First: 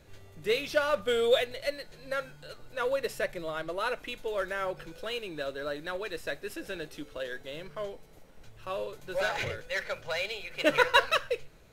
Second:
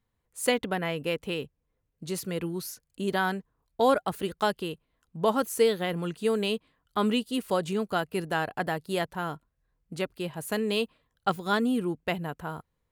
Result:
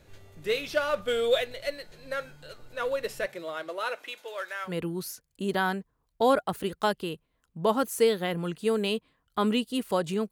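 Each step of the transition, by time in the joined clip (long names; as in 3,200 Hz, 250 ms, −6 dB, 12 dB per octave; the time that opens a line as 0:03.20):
first
0:03.25–0:04.73: high-pass filter 180 Hz → 1,100 Hz
0:04.68: continue with second from 0:02.27, crossfade 0.10 s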